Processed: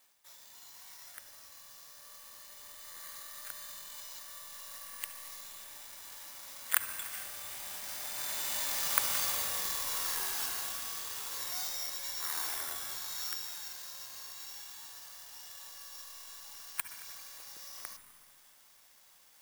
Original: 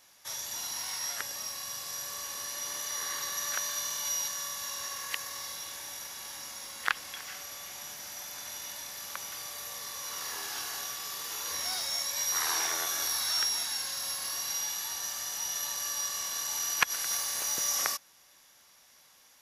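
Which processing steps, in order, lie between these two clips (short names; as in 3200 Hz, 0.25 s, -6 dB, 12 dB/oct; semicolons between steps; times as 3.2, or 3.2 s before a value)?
Doppler pass-by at 8.98, 7 m/s, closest 3.8 m; low shelf 190 Hz -6 dB; reverse; upward compressor, threshold -58 dBFS; reverse; on a send at -8.5 dB: monotone LPC vocoder at 8 kHz 240 Hz + reverb RT60 2.2 s, pre-delay 61 ms; on the sum: careless resampling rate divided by 4×, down filtered, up zero stuff; gain +7 dB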